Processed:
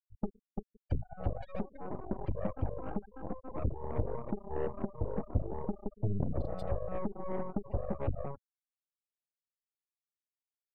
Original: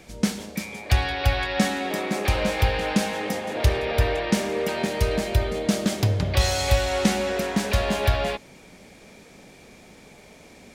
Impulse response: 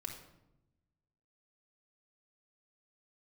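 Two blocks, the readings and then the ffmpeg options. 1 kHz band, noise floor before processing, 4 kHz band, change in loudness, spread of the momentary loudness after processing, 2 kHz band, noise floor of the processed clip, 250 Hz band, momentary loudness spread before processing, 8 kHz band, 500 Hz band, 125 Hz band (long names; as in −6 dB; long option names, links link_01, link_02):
−15.5 dB, −49 dBFS, below −40 dB, −14.5 dB, 6 LU, −30.0 dB, below −85 dBFS, −13.0 dB, 5 LU, below −40 dB, −13.0 dB, −12.0 dB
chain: -filter_complex "[0:a]asplit=2[link_01][link_02];[link_02]aecho=0:1:280:0.0794[link_03];[link_01][link_03]amix=inputs=2:normalize=0,alimiter=limit=-18dB:level=0:latency=1:release=454,afftfilt=real='re*gte(hypot(re,im),0.126)':imag='im*gte(hypot(re,im),0.126)':win_size=1024:overlap=0.75,aeval=exprs='0.126*(cos(1*acos(clip(val(0)/0.126,-1,1)))-cos(1*PI/2))+0.0282*(cos(3*acos(clip(val(0)/0.126,-1,1)))-cos(3*PI/2))+0.00251*(cos(7*acos(clip(val(0)/0.126,-1,1)))-cos(7*PI/2))+0.0178*(cos(8*acos(clip(val(0)/0.126,-1,1)))-cos(8*PI/2))':channel_layout=same,firequalizer=gain_entry='entry(550,0);entry(1400,-11);entry(4200,-17)':delay=0.05:min_phase=1"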